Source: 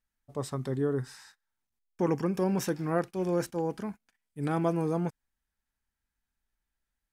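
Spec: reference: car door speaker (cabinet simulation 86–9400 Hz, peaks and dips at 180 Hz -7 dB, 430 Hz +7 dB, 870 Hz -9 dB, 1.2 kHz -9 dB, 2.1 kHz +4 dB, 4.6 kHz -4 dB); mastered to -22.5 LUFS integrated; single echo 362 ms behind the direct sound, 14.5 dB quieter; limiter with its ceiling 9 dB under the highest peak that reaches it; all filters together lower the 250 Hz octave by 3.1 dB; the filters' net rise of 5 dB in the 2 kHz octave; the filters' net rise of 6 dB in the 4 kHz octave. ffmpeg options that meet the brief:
-af "equalizer=f=250:t=o:g=-4,equalizer=f=2000:t=o:g=5,equalizer=f=4000:t=o:g=9,alimiter=limit=0.0668:level=0:latency=1,highpass=86,equalizer=f=180:t=q:w=4:g=-7,equalizer=f=430:t=q:w=4:g=7,equalizer=f=870:t=q:w=4:g=-9,equalizer=f=1200:t=q:w=4:g=-9,equalizer=f=2100:t=q:w=4:g=4,equalizer=f=4600:t=q:w=4:g=-4,lowpass=f=9400:w=0.5412,lowpass=f=9400:w=1.3066,aecho=1:1:362:0.188,volume=3.55"

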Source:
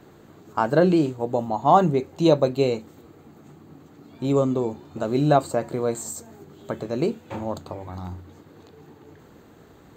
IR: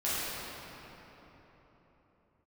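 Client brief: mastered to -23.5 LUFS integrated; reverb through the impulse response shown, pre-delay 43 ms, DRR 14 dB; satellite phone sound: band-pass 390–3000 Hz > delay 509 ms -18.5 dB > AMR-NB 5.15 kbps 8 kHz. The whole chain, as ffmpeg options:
-filter_complex "[0:a]asplit=2[s0][s1];[1:a]atrim=start_sample=2205,adelay=43[s2];[s1][s2]afir=irnorm=-1:irlink=0,volume=0.0668[s3];[s0][s3]amix=inputs=2:normalize=0,highpass=390,lowpass=3000,aecho=1:1:509:0.119,volume=1.33" -ar 8000 -c:a libopencore_amrnb -b:a 5150

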